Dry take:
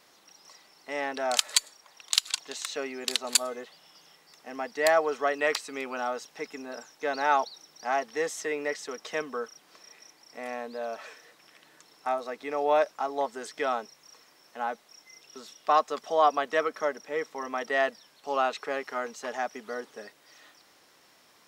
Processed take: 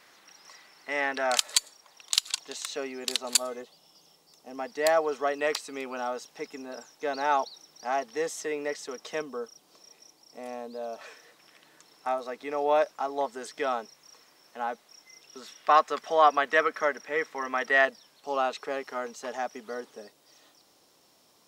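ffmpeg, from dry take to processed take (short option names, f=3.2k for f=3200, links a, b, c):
-af "asetnsamples=n=441:p=0,asendcmd='1.38 equalizer g -3;3.62 equalizer g -14;4.58 equalizer g -4;9.22 equalizer g -11.5;11.01 equalizer g -1.5;15.42 equalizer g 7;17.85 equalizer g -3.5;19.97 equalizer g -10.5',equalizer=f=1.8k:t=o:w=1.3:g=6.5"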